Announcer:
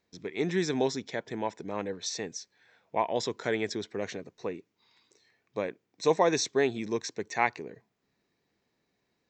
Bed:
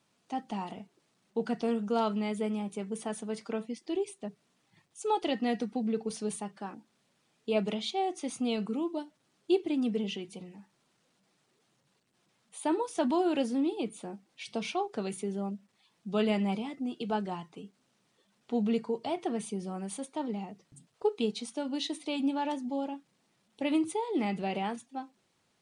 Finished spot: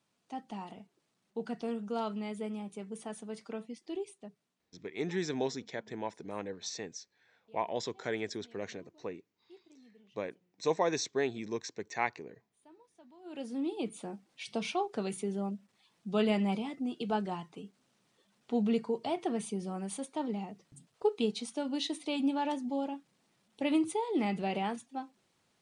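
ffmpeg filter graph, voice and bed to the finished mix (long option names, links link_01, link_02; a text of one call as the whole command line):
ffmpeg -i stem1.wav -i stem2.wav -filter_complex "[0:a]adelay=4600,volume=-5.5dB[link_01];[1:a]volume=23.5dB,afade=type=out:start_time=3.96:duration=0.97:silence=0.0630957,afade=type=in:start_time=13.21:duration=0.73:silence=0.0334965[link_02];[link_01][link_02]amix=inputs=2:normalize=0" out.wav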